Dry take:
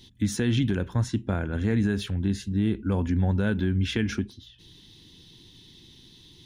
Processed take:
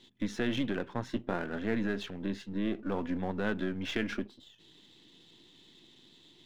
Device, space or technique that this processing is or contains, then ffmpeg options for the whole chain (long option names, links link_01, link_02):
crystal radio: -filter_complex "[0:a]asettb=1/sr,asplit=3[link_01][link_02][link_03];[link_01]atrim=end=1.084[link_04];[link_02]atrim=start=1.08:end=1.59,asetpts=PTS-STARTPTS,afade=type=in:duration=0.004:curve=qsin,afade=type=out:start_time=0.506:duration=0.004:curve=qsin,asplit=2[link_05][link_06];[link_06]adelay=17,volume=-7dB[link_07];[link_05][link_07]amix=inputs=2:normalize=0,atrim=end_sample=22491[link_08];[link_03]atrim=start=1.586[link_09];[link_04][link_08]acrossfade=duration=0.004:curve1=hsin:curve2=qsin[link_10];[link_10][link_09]acrossfade=duration=0.004:curve1=qsin:curve2=hsin,highpass=260,lowpass=3300,aeval=exprs='if(lt(val(0),0),0.447*val(0),val(0))':channel_layout=same"